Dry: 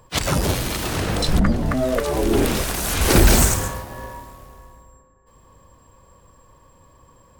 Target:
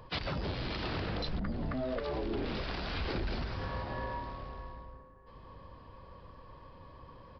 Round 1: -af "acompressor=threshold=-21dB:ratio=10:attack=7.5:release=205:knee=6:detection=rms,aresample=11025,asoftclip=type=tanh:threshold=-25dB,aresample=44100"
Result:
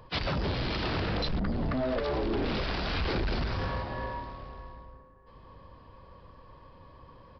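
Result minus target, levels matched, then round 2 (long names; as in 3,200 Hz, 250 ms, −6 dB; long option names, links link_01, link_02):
downward compressor: peak gain reduction −8 dB
-af "acompressor=threshold=-30dB:ratio=10:attack=7.5:release=205:knee=6:detection=rms,aresample=11025,asoftclip=type=tanh:threshold=-25dB,aresample=44100"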